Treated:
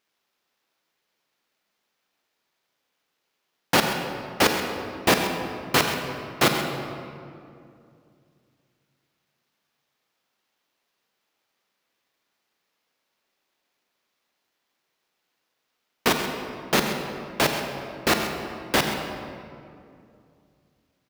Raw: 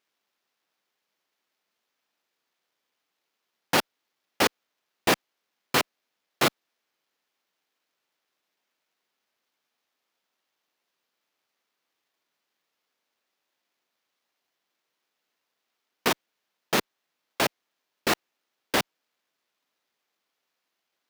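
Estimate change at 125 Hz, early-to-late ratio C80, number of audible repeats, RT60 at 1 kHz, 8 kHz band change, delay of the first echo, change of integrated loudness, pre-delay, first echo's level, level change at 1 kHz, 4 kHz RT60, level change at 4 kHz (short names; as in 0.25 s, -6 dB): +8.0 dB, 5.0 dB, 1, 2.3 s, +3.5 dB, 0.131 s, +2.5 dB, 35 ms, -11.5 dB, +4.0 dB, 1.4 s, +4.0 dB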